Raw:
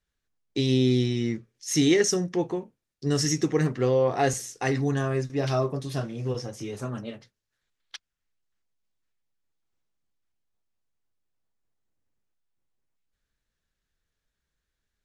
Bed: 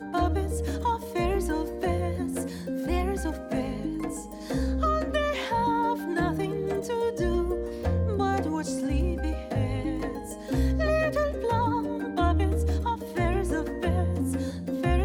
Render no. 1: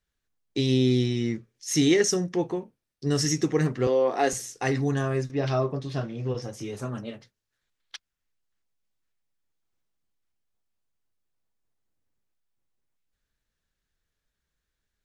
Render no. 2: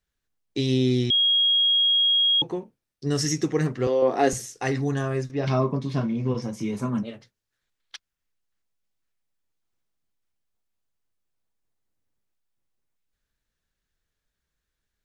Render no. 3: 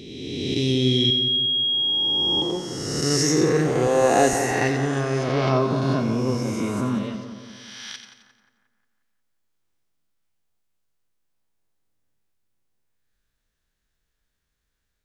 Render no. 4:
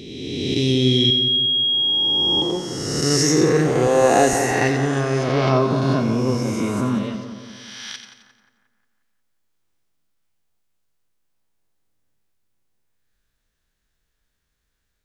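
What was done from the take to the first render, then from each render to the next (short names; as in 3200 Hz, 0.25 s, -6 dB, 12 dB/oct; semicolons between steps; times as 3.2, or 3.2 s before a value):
2.38–3.2 notch 7000 Hz; 3.87–4.33 HPF 220 Hz 24 dB/oct; 5.31–6.42 LPF 4700 Hz
1.1–2.42 bleep 3280 Hz -17 dBFS; 4.02–4.46 low shelf 390 Hz +9 dB; 5.47–7.03 small resonant body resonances 210/990/2200 Hz, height 13 dB, ringing for 40 ms
spectral swells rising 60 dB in 1.88 s; on a send: split-band echo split 1700 Hz, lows 0.178 s, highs 88 ms, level -8.5 dB
gain +3 dB; limiter -3 dBFS, peak gain reduction 2 dB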